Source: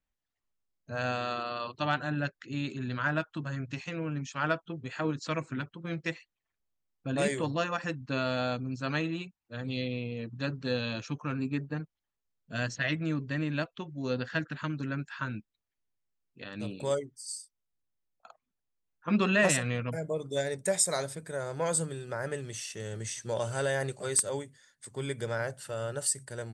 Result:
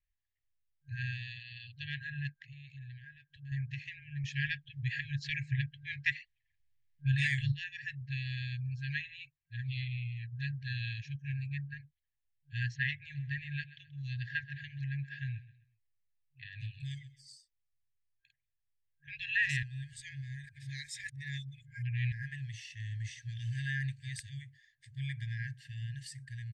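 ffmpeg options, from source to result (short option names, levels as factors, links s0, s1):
-filter_complex "[0:a]asettb=1/sr,asplit=3[s0][s1][s2];[s0]atrim=end=2.344[s3];[s1]atrim=start=2.34:end=3.52,asetpts=PTS-STARTPTS,afade=t=in:d=0.004:c=qsin,afade=t=out:st=1.176:d=0.004:c=qsin,acompressor=threshold=0.00891:ratio=10:attack=3.2:release=140:knee=1:detection=peak[s4];[s2]atrim=start=3.516[s5];[s3][s4]acrossfade=d=0.004:c1=hsin:c2=qsin[s6];[s6][s5]acrossfade=d=0.004:c1=qsin:c2=hsin,asplit=3[s7][s8][s9];[s7]afade=t=out:st=13.14:d=0.02[s10];[s8]aecho=1:1:130|260|390:0.141|0.0452|0.0145,afade=t=in:st=13.14:d=0.02,afade=t=out:st=17.35:d=0.02[s11];[s9]afade=t=in:st=17.35:d=0.02[s12];[s10][s11][s12]amix=inputs=3:normalize=0,asplit=5[s13][s14][s15][s16][s17];[s13]atrim=end=4.242[s18];[s14]atrim=start=4.238:end=7.522,asetpts=PTS-STARTPTS,volume=2.37[s19];[s15]atrim=start=7.518:end=19.632[s20];[s16]atrim=start=19.628:end=22.122,asetpts=PTS-STARTPTS,areverse[s21];[s17]atrim=start=22.118[s22];[s18][s19]acrossfade=d=0.004:c1=hsin:c2=hsin[s23];[s23][s20]acrossfade=d=0.004:c1=hsin:c2=hsin[s24];[s24][s21]acrossfade=d=0.004:c1=hsin:c2=hsin[s25];[s25][s22]acrossfade=d=0.004:c1=hsin:c2=hsin,aemphasis=mode=reproduction:type=75fm,afftfilt=real='re*(1-between(b*sr/4096,140,1600))':imag='im*(1-between(b*sr/4096,140,1600))':win_size=4096:overlap=0.75,equalizer=f=9000:t=o:w=1.1:g=-12,volume=1.12"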